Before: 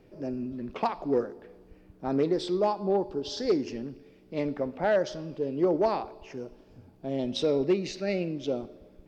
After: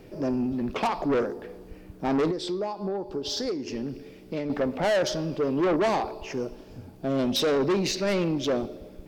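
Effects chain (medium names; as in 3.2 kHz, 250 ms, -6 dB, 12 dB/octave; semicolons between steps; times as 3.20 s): treble shelf 5.1 kHz +6.5 dB; 2.30–4.50 s: compression 10:1, threshold -35 dBFS, peak gain reduction 15.5 dB; saturation -29.5 dBFS, distortion -7 dB; trim +9 dB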